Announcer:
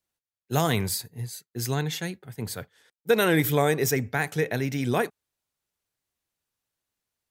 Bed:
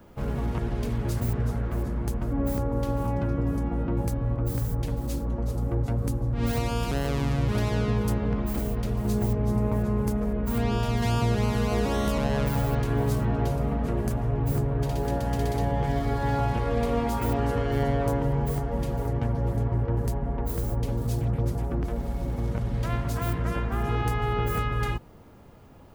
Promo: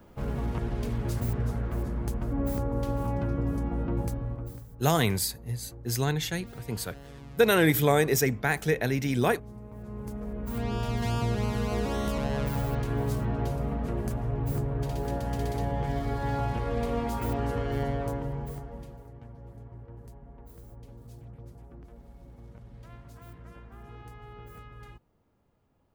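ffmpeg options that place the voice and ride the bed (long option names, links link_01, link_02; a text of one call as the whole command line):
ffmpeg -i stem1.wav -i stem2.wav -filter_complex "[0:a]adelay=4300,volume=0dB[link_01];[1:a]volume=13dB,afade=type=out:start_time=3.99:duration=0.66:silence=0.141254,afade=type=in:start_time=9.71:duration=1.17:silence=0.16788,afade=type=out:start_time=17.71:duration=1.33:silence=0.158489[link_02];[link_01][link_02]amix=inputs=2:normalize=0" out.wav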